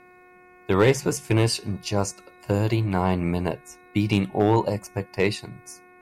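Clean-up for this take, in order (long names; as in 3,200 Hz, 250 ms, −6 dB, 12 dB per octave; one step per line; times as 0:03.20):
clipped peaks rebuilt −9.5 dBFS
hum removal 362.3 Hz, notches 7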